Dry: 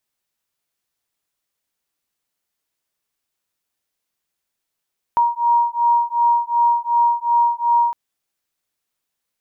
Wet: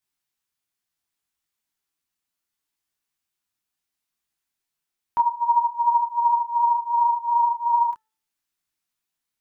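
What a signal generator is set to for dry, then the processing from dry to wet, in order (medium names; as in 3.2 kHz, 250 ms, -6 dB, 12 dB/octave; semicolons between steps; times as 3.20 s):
beating tones 944 Hz, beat 2.7 Hz, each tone -17 dBFS 2.76 s
peaking EQ 530 Hz -10.5 dB 0.46 oct; de-hum 438.2 Hz, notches 4; detune thickener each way 24 cents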